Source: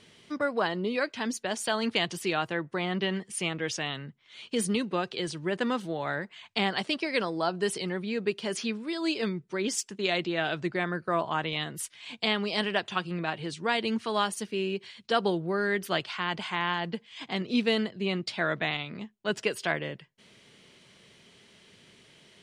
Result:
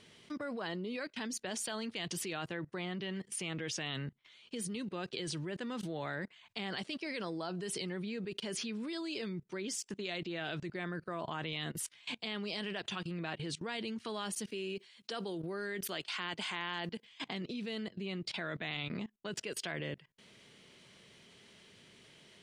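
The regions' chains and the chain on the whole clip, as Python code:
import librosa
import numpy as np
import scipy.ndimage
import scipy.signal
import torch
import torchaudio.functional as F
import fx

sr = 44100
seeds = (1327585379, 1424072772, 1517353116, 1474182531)

y = fx.chain(x, sr, fx.highpass(hz=210.0, slope=12),
    fx.high_shelf(hz=8100.0, db=10.0), at=(14.5, 17.05))
y = fx.dynamic_eq(y, sr, hz=900.0, q=0.72, threshold_db=-42.0, ratio=4.0, max_db=-5)
y = fx.level_steps(y, sr, step_db=21)
y = F.gain(torch.from_numpy(y), 3.0).numpy()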